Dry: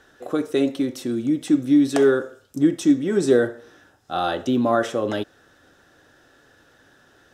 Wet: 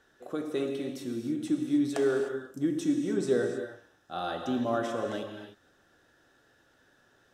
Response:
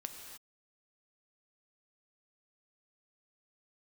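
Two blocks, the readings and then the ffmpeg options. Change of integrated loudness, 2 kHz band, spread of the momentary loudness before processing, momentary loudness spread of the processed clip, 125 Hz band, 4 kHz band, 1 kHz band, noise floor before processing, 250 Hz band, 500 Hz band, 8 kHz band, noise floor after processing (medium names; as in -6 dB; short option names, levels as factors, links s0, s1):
-9.5 dB, -9.5 dB, 10 LU, 11 LU, -8.5 dB, -9.0 dB, -9.5 dB, -57 dBFS, -10.0 dB, -9.0 dB, -9.0 dB, -66 dBFS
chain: -filter_complex "[1:a]atrim=start_sample=2205[s0];[0:a][s0]afir=irnorm=-1:irlink=0,volume=0.447"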